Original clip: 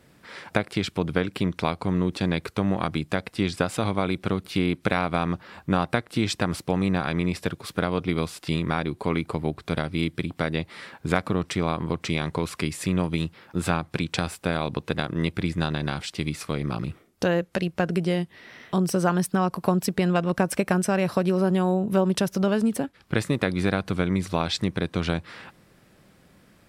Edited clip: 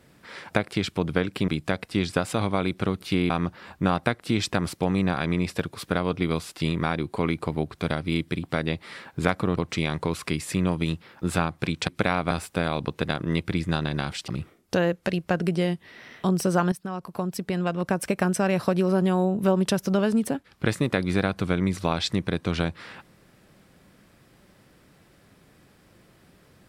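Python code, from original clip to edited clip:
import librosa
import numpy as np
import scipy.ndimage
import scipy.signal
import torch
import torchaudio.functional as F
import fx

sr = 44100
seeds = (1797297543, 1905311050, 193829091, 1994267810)

y = fx.edit(x, sr, fx.cut(start_s=1.48, length_s=1.44),
    fx.move(start_s=4.74, length_s=0.43, to_s=14.2),
    fx.cut(start_s=11.44, length_s=0.45),
    fx.cut(start_s=16.17, length_s=0.6),
    fx.fade_in_from(start_s=19.21, length_s=1.76, floor_db=-12.5), tone=tone)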